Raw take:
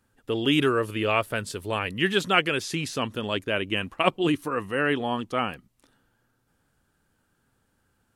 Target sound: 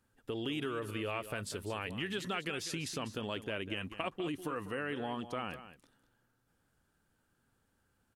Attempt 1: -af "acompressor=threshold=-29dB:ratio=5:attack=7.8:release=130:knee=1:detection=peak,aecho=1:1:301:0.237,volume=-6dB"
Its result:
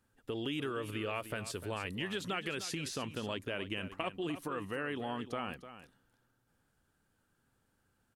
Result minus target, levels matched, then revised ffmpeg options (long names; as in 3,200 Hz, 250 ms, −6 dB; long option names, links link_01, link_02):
echo 103 ms late
-af "acompressor=threshold=-29dB:ratio=5:attack=7.8:release=130:knee=1:detection=peak,aecho=1:1:198:0.237,volume=-6dB"